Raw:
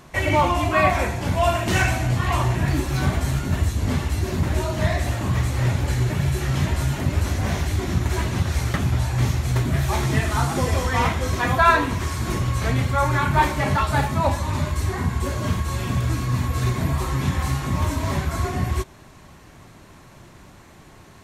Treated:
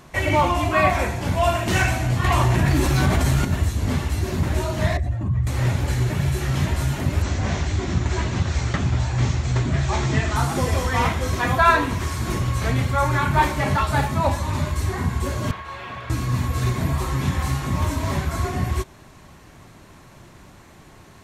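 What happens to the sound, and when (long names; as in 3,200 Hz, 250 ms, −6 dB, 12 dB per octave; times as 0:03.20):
0:02.24–0:03.45: envelope flattener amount 70%
0:04.97–0:05.47: expanding power law on the bin magnitudes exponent 1.7
0:07.22–0:10.36: Butterworth low-pass 7,900 Hz 72 dB per octave
0:15.51–0:16.10: three-way crossover with the lows and the highs turned down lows −18 dB, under 500 Hz, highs −23 dB, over 3,600 Hz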